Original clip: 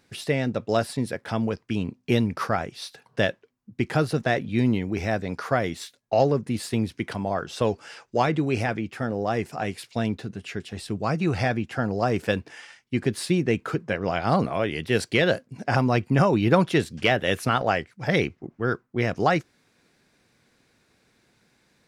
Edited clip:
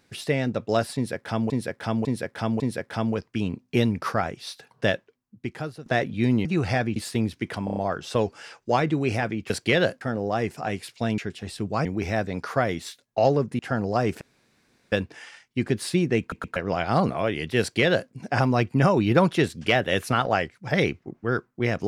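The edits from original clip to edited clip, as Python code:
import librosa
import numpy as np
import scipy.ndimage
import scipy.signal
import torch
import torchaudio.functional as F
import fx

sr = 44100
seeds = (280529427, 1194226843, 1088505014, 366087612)

y = fx.edit(x, sr, fx.repeat(start_s=0.95, length_s=0.55, count=4),
    fx.fade_out_to(start_s=3.26, length_s=0.95, floor_db=-19.0),
    fx.swap(start_s=4.8, length_s=1.74, other_s=11.15, other_length_s=0.51),
    fx.stutter(start_s=7.23, slice_s=0.03, count=5),
    fx.cut(start_s=10.13, length_s=0.35),
    fx.insert_room_tone(at_s=12.28, length_s=0.71),
    fx.stutter_over(start_s=13.56, slice_s=0.12, count=3),
    fx.duplicate(start_s=14.96, length_s=0.51, to_s=8.96), tone=tone)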